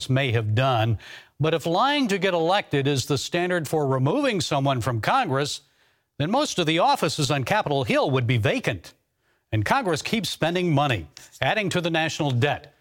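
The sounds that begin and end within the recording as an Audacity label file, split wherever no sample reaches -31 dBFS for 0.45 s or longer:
6.200000	8.860000	sound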